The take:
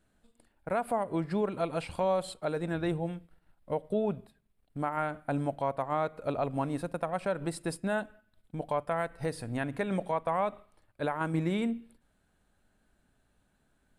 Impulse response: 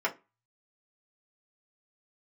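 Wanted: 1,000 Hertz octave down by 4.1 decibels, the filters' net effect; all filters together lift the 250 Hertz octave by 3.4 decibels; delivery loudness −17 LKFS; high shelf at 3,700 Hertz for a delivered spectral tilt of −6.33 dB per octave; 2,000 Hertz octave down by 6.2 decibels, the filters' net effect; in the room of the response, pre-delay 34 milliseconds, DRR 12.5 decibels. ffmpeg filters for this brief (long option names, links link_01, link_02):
-filter_complex "[0:a]equalizer=frequency=250:width_type=o:gain=5,equalizer=frequency=1000:width_type=o:gain=-4.5,equalizer=frequency=2000:width_type=o:gain=-6,highshelf=frequency=3700:gain=-3,asplit=2[link_01][link_02];[1:a]atrim=start_sample=2205,adelay=34[link_03];[link_02][link_03]afir=irnorm=-1:irlink=0,volume=-22dB[link_04];[link_01][link_04]amix=inputs=2:normalize=0,volume=15.5dB"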